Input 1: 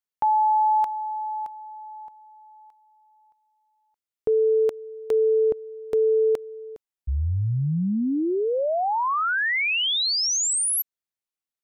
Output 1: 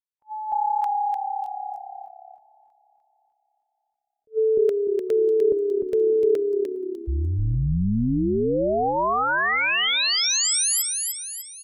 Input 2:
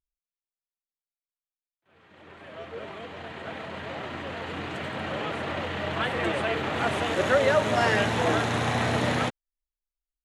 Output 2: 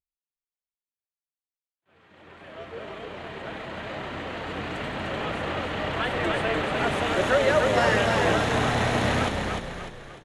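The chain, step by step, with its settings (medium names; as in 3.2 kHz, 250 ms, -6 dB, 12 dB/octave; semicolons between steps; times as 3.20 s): frequency-shifting echo 299 ms, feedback 45%, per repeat -34 Hz, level -4 dB; spectral noise reduction 12 dB; attacks held to a fixed rise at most 470 dB/s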